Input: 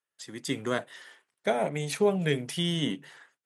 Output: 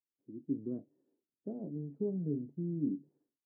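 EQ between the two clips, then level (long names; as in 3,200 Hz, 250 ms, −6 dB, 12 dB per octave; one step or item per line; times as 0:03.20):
transistor ladder low-pass 340 Hz, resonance 55%
0.0 dB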